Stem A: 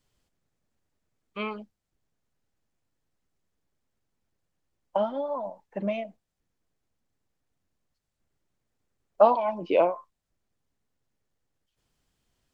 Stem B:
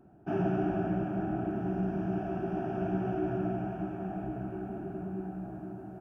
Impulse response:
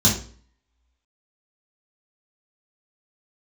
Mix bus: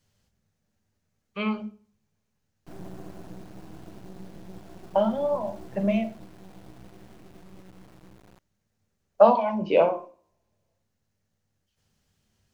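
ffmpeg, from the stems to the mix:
-filter_complex "[0:a]volume=2.5dB,asplit=2[a][b];[b]volume=-23.5dB[c];[1:a]acrusher=bits=4:dc=4:mix=0:aa=0.000001,lowshelf=f=230:g=11,adelay=2400,volume=-12.5dB[d];[2:a]atrim=start_sample=2205[e];[c][e]afir=irnorm=-1:irlink=0[f];[a][d][f]amix=inputs=3:normalize=0,lowshelf=f=120:g=-4.5"

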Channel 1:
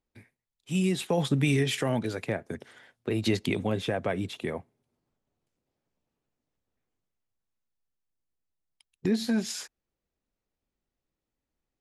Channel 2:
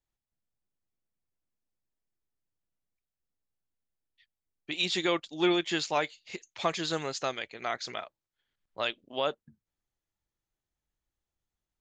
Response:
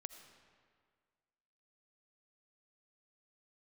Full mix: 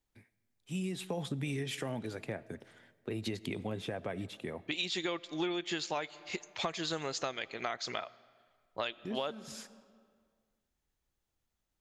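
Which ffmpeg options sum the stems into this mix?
-filter_complex "[0:a]volume=-10dB,asplit=2[a][b];[b]volume=-4.5dB[c];[1:a]volume=1.5dB,asplit=3[d][e][f];[e]volume=-9dB[g];[f]apad=whole_len=520767[h];[a][h]sidechaincompress=threshold=-47dB:ratio=8:attack=16:release=227[i];[2:a]atrim=start_sample=2205[j];[c][g]amix=inputs=2:normalize=0[k];[k][j]afir=irnorm=-1:irlink=0[l];[i][d][l]amix=inputs=3:normalize=0,acompressor=threshold=-32dB:ratio=8"

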